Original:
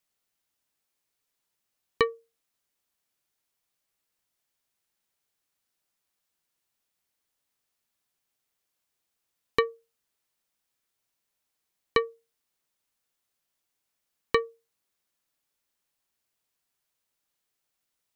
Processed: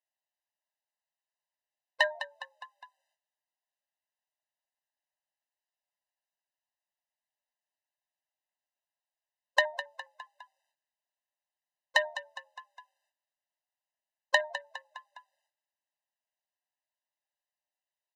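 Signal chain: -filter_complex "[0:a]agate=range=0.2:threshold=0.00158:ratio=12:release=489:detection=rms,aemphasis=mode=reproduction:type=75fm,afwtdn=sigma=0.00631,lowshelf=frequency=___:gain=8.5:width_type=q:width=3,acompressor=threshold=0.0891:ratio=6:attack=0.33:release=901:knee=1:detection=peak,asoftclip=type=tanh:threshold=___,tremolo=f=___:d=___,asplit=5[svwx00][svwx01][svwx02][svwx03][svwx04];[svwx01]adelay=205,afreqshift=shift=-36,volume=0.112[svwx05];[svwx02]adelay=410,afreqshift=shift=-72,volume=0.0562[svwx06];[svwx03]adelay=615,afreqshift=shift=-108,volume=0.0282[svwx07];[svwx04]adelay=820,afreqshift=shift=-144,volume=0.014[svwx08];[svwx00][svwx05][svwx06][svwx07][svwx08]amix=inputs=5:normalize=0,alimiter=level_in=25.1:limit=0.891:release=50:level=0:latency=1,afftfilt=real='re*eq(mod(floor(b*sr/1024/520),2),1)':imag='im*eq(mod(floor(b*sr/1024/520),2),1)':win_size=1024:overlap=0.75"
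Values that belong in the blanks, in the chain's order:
130, 0.106, 150, 0.4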